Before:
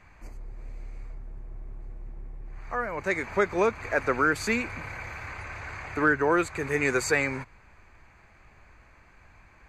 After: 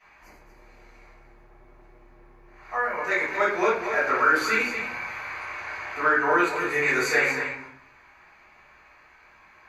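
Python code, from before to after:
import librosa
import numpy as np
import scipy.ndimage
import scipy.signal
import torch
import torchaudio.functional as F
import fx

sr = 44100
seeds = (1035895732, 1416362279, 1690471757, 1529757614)

p1 = fx.highpass(x, sr, hz=960.0, slope=6)
p2 = fx.peak_eq(p1, sr, hz=8300.0, db=-11.5, octaves=0.49)
p3 = p2 + fx.echo_single(p2, sr, ms=232, db=-9.0, dry=0)
p4 = fx.room_shoebox(p3, sr, seeds[0], volume_m3=53.0, walls='mixed', distance_m=3.1)
y = p4 * 10.0 ** (-7.0 / 20.0)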